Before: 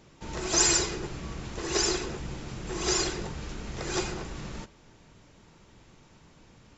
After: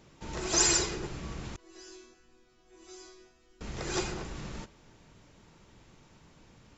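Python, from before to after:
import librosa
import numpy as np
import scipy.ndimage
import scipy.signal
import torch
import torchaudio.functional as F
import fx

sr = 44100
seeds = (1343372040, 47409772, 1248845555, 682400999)

y = fx.resonator_bank(x, sr, root=59, chord='sus4', decay_s=0.67, at=(1.56, 3.61))
y = y * 10.0 ** (-2.0 / 20.0)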